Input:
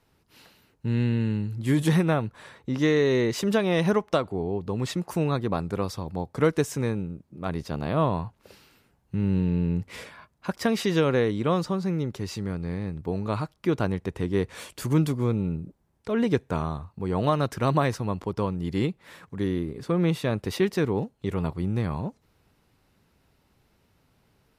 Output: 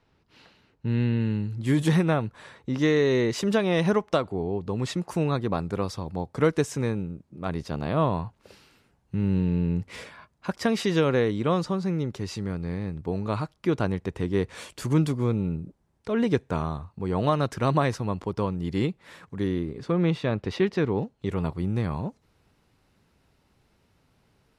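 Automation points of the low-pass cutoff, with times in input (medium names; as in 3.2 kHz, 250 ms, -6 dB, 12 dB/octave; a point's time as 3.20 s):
1.16 s 4.7 kHz
1.70 s 10 kHz
19.40 s 10 kHz
20.25 s 4.3 kHz
20.80 s 4.3 kHz
21.45 s 11 kHz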